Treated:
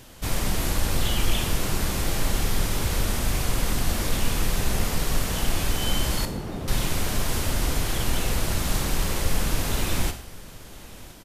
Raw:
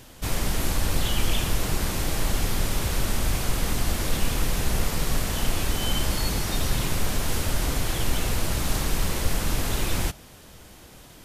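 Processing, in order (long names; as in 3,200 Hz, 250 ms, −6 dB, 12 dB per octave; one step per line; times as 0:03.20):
0:06.25–0:06.68: resonant band-pass 260 Hz, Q 0.55
single-tap delay 1,018 ms −20 dB
four-comb reverb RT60 0.57 s, combs from 32 ms, DRR 8.5 dB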